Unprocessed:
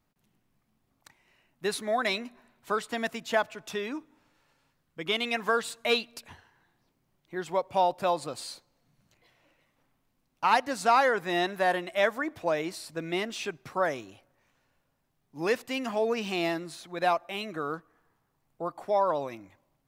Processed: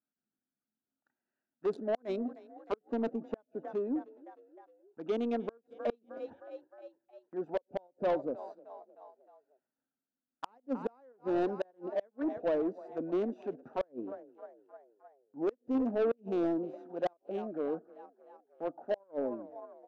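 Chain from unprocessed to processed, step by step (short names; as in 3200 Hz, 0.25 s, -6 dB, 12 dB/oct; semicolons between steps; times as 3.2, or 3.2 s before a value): Wiener smoothing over 41 samples; fifteen-band EQ 250 Hz +12 dB, 1600 Hz +7 dB, 6300 Hz +8 dB; gate -55 dBFS, range -11 dB; in parallel at +0.5 dB: level quantiser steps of 23 dB; on the sum: auto-wah 480–1400 Hz, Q 2, down, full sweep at -25 dBFS; frequency-shifting echo 0.309 s, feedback 60%, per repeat +33 Hz, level -23 dB; flipped gate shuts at -17 dBFS, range -41 dB; soft clip -28.5 dBFS, distortion -11 dB; bell 1900 Hz -6.5 dB 0.87 oct; gain +4 dB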